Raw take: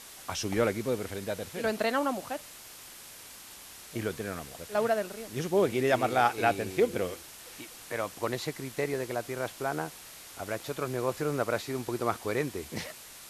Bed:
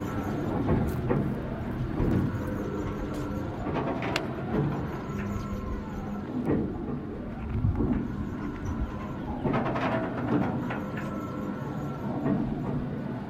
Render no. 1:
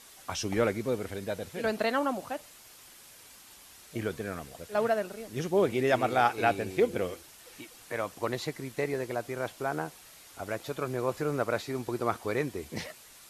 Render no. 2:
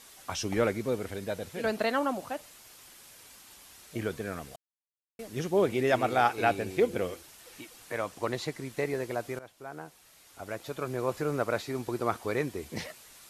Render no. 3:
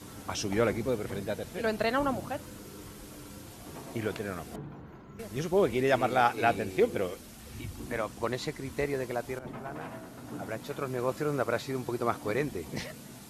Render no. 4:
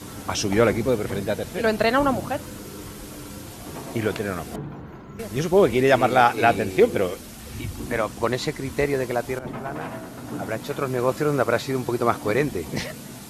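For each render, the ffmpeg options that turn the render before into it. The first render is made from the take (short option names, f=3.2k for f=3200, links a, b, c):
-af "afftdn=nr=6:nf=-48"
-filter_complex "[0:a]asettb=1/sr,asplit=3[a][b][c];[a]atrim=end=7.984[d];[b]atrim=start=7.98:end=8.72,asetpts=PTS-STARTPTS,afade=t=in:d=0.004:c=qsin,afade=t=out:st=0.736:d=0.004:c=qsin,equalizer=f=12k:w=4.6:g=-6.5[e];[c]atrim=start=8.716[f];[d][e]acrossfade=d=0.004:c1=hsin:c2=qsin[g];[g][f]acrossfade=d=0.004:c1=qsin:c2=hsin,asplit=4[h][i][j][k];[h]atrim=end=4.56,asetpts=PTS-STARTPTS,afade=t=out:st=4.556:d=0.004:c=hsin[l];[i]atrim=start=4.56:end=5.19,asetpts=PTS-STARTPTS,volume=0[m];[j]atrim=start=5.19:end=9.39,asetpts=PTS-STARTPTS,afade=t=in:d=0.004:c=hsin,afade=t=out:st=4.196:d=0.004:c=hsin:silence=0.149624[n];[k]atrim=start=9.39,asetpts=PTS-STARTPTS,afade=t=in:d=1.72:silence=0.149624[o];[l][m][n][o]concat=n=4:v=0:a=1"
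-filter_complex "[1:a]volume=-15dB[a];[0:a][a]amix=inputs=2:normalize=0"
-af "volume=8.5dB,alimiter=limit=-3dB:level=0:latency=1"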